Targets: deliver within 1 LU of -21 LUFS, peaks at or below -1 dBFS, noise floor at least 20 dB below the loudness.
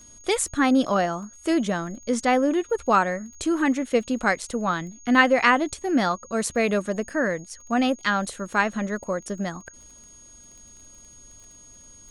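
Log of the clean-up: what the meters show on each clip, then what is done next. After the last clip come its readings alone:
tick rate 23 per s; steady tone 6.6 kHz; tone level -47 dBFS; loudness -23.5 LUFS; peak level -4.5 dBFS; loudness target -21.0 LUFS
-> de-click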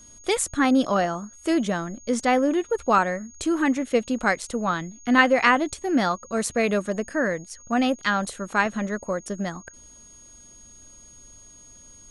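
tick rate 0 per s; steady tone 6.6 kHz; tone level -47 dBFS
-> band-stop 6.6 kHz, Q 30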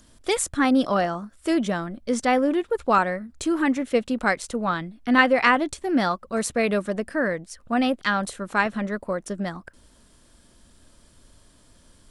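steady tone not found; loudness -23.5 LUFS; peak level -4.5 dBFS; loudness target -21.0 LUFS
-> trim +2.5 dB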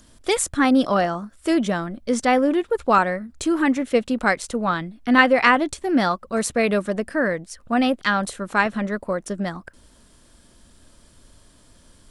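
loudness -21.0 LUFS; peak level -2.0 dBFS; noise floor -54 dBFS

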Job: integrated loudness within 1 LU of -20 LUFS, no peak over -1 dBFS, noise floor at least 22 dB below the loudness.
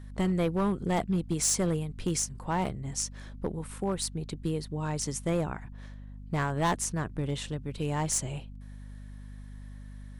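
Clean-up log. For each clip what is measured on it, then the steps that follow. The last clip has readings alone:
clipped samples 1.2%; clipping level -21.5 dBFS; hum 50 Hz; highest harmonic 250 Hz; hum level -42 dBFS; loudness -31.0 LUFS; peak level -21.5 dBFS; loudness target -20.0 LUFS
-> clip repair -21.5 dBFS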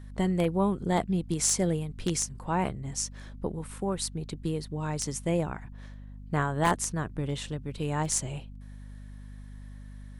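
clipped samples 0.0%; hum 50 Hz; highest harmonic 250 Hz; hum level -42 dBFS
-> hum notches 50/100/150/200/250 Hz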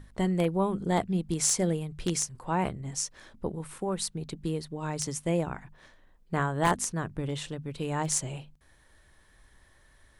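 hum not found; loudness -30.5 LUFS; peak level -12.5 dBFS; loudness target -20.0 LUFS
-> trim +10.5 dB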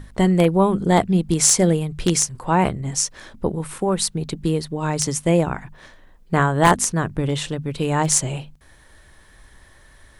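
loudness -20.0 LUFS; peak level -2.0 dBFS; noise floor -50 dBFS

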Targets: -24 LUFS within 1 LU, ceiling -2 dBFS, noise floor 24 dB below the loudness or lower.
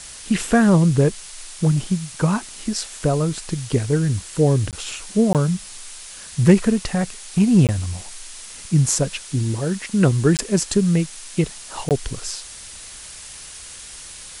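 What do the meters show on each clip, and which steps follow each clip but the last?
dropouts 5; longest dropout 18 ms; noise floor -38 dBFS; noise floor target -44 dBFS; loudness -20.0 LUFS; peak level -3.0 dBFS; loudness target -24.0 LUFS
-> interpolate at 4.71/5.33/7.67/10.37/11.89 s, 18 ms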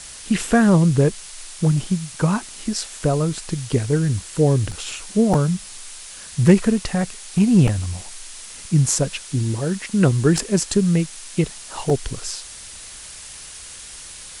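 dropouts 0; noise floor -38 dBFS; noise floor target -44 dBFS
-> noise print and reduce 6 dB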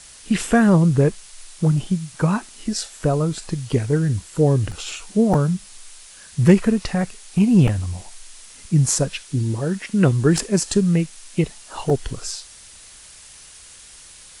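noise floor -44 dBFS; noise floor target -45 dBFS
-> noise print and reduce 6 dB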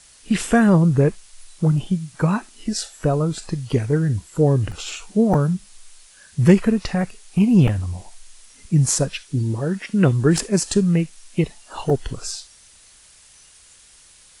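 noise floor -50 dBFS; loudness -20.0 LUFS; peak level -3.0 dBFS; loudness target -24.0 LUFS
-> trim -4 dB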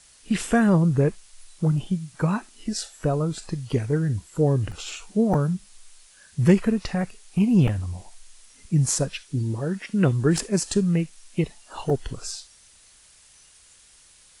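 loudness -24.0 LUFS; peak level -7.0 dBFS; noise floor -54 dBFS

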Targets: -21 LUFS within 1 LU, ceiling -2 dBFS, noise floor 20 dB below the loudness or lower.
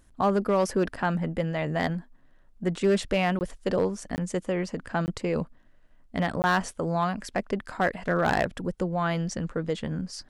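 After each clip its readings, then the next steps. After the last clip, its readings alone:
clipped samples 0.4%; clipping level -16.0 dBFS; dropouts 4; longest dropout 19 ms; loudness -28.0 LUFS; peak level -16.0 dBFS; loudness target -21.0 LUFS
-> clip repair -16 dBFS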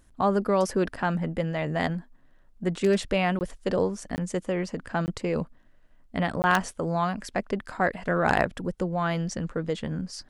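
clipped samples 0.0%; dropouts 4; longest dropout 19 ms
-> interpolate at 3.39/4.16/5.06/6.42 s, 19 ms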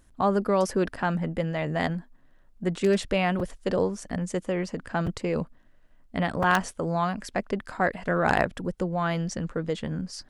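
dropouts 0; loudness -27.5 LUFS; peak level -7.0 dBFS; loudness target -21.0 LUFS
-> trim +6.5 dB; peak limiter -2 dBFS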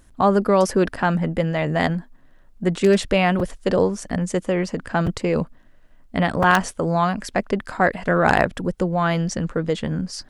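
loudness -21.0 LUFS; peak level -2.0 dBFS; noise floor -50 dBFS

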